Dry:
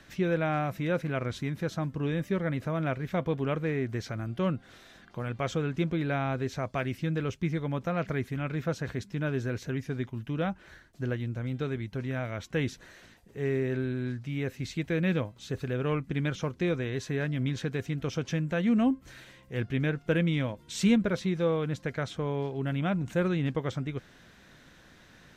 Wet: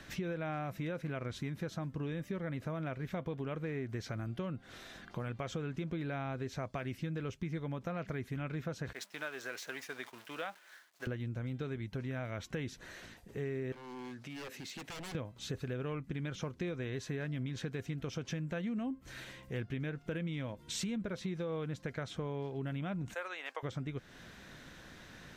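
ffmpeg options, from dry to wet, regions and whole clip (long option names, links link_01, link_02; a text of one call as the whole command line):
ffmpeg -i in.wav -filter_complex "[0:a]asettb=1/sr,asplit=3[link_01][link_02][link_03];[link_01]atrim=end=8.934[link_04];[link_02]atrim=start=8.93:end=11.07,asetpts=PTS-STARTPTS,afade=type=in:duration=0.004:curve=qsin,afade=type=out:start_time=2.136:duration=0.004:curve=qsin,aeval=exprs='val(0)+0.5*0.00596*sgn(val(0))':channel_layout=same,agate=range=-33dB:threshold=-38dB:ratio=3:release=100:detection=peak,highpass=770[link_05];[link_03]atrim=start=11.066[link_06];[link_04][link_05]acrossfade=duration=0.004:curve1=hsin:curve2=qsin[link_07];[link_07][link_06]acrossfade=duration=0.004:curve1=qsin:curve2=hsin,asettb=1/sr,asplit=3[link_08][link_09][link_10];[link_08]atrim=end=13.724[link_11];[link_09]atrim=start=13.72:end=15.15,asetpts=PTS-STARTPTS,afade=type=in:duration=0.004:curve=qsin,afade=type=out:start_time=1.426:duration=0.004:curve=qsin,highpass=270,aeval=exprs='0.0188*(abs(mod(val(0)/0.0188+3,4)-2)-1)':channel_layout=same,acompressor=threshold=-44dB:ratio=10:attack=3.2:release=140:knee=1:detection=peak[link_12];[link_10]atrim=start=15.146[link_13];[link_11][link_12]acrossfade=duration=0.004:curve1=hsin:curve2=qsin[link_14];[link_14][link_13]acrossfade=duration=0.004:curve1=qsin:curve2=hsin,asettb=1/sr,asplit=3[link_15][link_16][link_17];[link_15]atrim=end=23.144[link_18];[link_16]atrim=start=23.14:end=23.63,asetpts=PTS-STARTPTS,afade=type=in:duration=0.004:curve=qsin,afade=type=out:start_time=0.486:duration=0.004:curve=qsin,highpass=frequency=650:width=0.5412,highpass=frequency=650:width=1.3066,equalizer=frequency=3500:width_type=o:width=0.36:gain=-4.5[link_19];[link_17]atrim=start=23.626[link_20];[link_18][link_19]acrossfade=duration=0.004:curve1=hsin:curve2=qsin[link_21];[link_21][link_20]acrossfade=duration=0.004:curve1=qsin:curve2=hsin,alimiter=limit=-21.5dB:level=0:latency=1:release=94,acompressor=threshold=-41dB:ratio=3,volume=2.5dB" out.wav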